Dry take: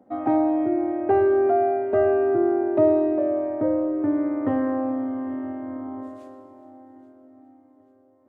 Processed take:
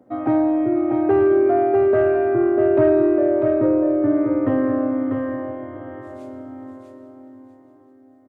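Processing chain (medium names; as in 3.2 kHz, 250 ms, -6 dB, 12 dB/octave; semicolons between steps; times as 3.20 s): graphic EQ with 31 bands 125 Hz +9 dB, 200 Hz -5 dB, 800 Hz -7 dB; saturation -11.5 dBFS, distortion -24 dB; on a send: feedback delay 645 ms, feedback 21%, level -5 dB; on the sum: trim +4 dB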